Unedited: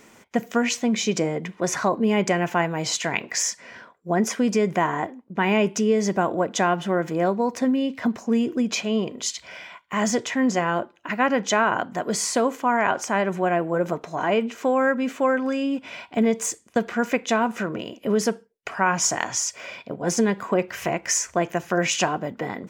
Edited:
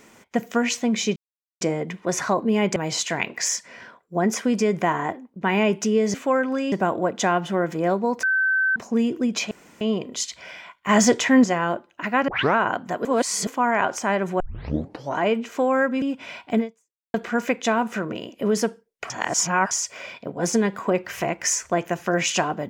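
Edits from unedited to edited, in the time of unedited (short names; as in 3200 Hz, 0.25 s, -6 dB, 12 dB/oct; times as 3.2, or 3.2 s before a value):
1.16 insert silence 0.45 s
2.31–2.7 cut
7.59–8.12 bleep 1540 Hz -17.5 dBFS
8.87 insert room tone 0.30 s
9.95–10.5 gain +6 dB
11.34 tape start 0.27 s
12.11–12.53 reverse
13.46 tape start 0.77 s
15.08–15.66 move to 6.08
16.23–16.78 fade out exponential
18.74–19.35 reverse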